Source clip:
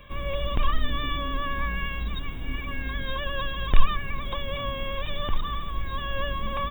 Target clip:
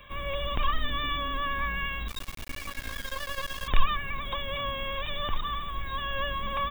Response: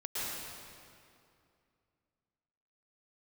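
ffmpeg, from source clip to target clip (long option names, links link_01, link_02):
-filter_complex "[0:a]acrossover=split=640[link_01][link_02];[link_02]acontrast=66[link_03];[link_01][link_03]amix=inputs=2:normalize=0,asettb=1/sr,asplit=3[link_04][link_05][link_06];[link_04]atrim=end=2.084[link_07];[link_05]atrim=start=2.08:end=3.68,asetpts=PTS-STARTPTS,afade=type=in:duration=0.004:curve=qsin,afade=type=out:start_time=1.596:duration=0.004:curve=qsin,acrusher=bits=3:dc=4:mix=0:aa=0.000001[link_08];[link_06]atrim=start=3.676[link_09];[link_07][link_08]acrossfade=duration=0.004:curve1=hsin:curve2=qsin[link_10];[link_10][link_09]acrossfade=duration=0.004:curve1=qsin:curve2=hsin,volume=-5.5dB"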